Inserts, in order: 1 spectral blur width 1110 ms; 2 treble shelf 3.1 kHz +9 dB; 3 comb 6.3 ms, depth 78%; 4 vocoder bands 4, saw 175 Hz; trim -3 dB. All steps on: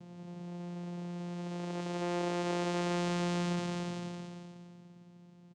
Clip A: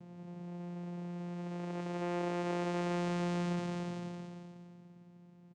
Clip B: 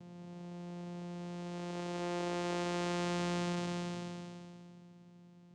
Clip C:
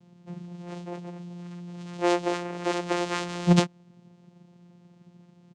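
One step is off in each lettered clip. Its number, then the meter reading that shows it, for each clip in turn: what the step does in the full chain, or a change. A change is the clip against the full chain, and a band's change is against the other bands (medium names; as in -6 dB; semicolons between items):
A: 2, 8 kHz band -5.5 dB; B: 3, loudness change -2.5 LU; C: 1, crest factor change +8.5 dB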